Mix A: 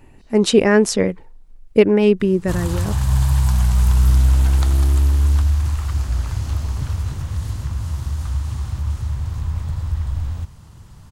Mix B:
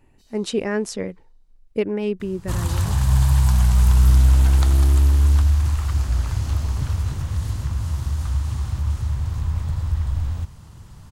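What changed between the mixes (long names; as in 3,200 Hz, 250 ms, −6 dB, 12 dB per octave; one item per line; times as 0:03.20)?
speech −10.0 dB
first sound: remove high-frequency loss of the air 77 metres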